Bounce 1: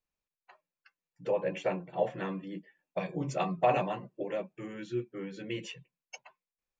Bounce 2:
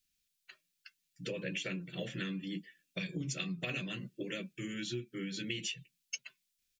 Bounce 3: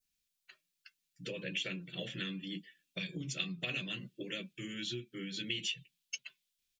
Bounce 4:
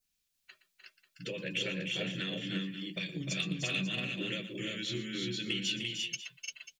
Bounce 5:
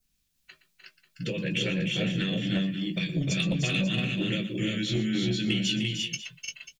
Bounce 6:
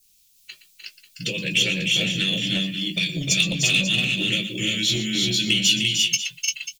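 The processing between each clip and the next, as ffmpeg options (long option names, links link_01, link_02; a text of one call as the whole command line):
ffmpeg -i in.wav -af "firequalizer=gain_entry='entry(250,0);entry(840,-28);entry(1400,-3);entry(3300,10)':delay=0.05:min_phase=1,acompressor=threshold=-39dB:ratio=6,volume=4dB" out.wav
ffmpeg -i in.wav -af "adynamicequalizer=threshold=0.00158:dfrequency=3300:dqfactor=1.9:tfrequency=3300:tqfactor=1.9:attack=5:release=100:ratio=0.375:range=4:mode=boostabove:tftype=bell,volume=-3dB" out.wav
ffmpeg -i in.wav -filter_complex "[0:a]asoftclip=type=tanh:threshold=-24dB,asplit=2[link_01][link_02];[link_02]aecho=0:1:118|303|345|541:0.188|0.447|0.708|0.211[link_03];[link_01][link_03]amix=inputs=2:normalize=0,volume=2.5dB" out.wav
ffmpeg -i in.wav -filter_complex "[0:a]acrossover=split=260|3600[link_01][link_02][link_03];[link_01]aeval=exprs='0.0447*sin(PI/2*2.24*val(0)/0.0447)':channel_layout=same[link_04];[link_04][link_02][link_03]amix=inputs=3:normalize=0,asplit=2[link_05][link_06];[link_06]adelay=19,volume=-10dB[link_07];[link_05][link_07]amix=inputs=2:normalize=0,volume=4dB" out.wav
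ffmpeg -i in.wav -af "aexciter=amount=2.2:drive=9.8:freq=2300" out.wav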